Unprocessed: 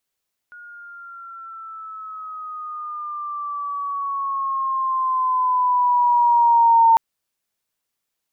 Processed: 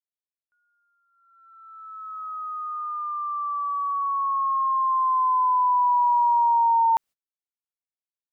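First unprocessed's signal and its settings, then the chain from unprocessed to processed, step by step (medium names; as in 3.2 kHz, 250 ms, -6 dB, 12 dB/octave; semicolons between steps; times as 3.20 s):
gliding synth tone sine, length 6.45 s, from 1.44 kHz, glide -8 st, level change +28.5 dB, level -9.5 dB
gate -35 dBFS, range -31 dB; compression, threshold -18 dBFS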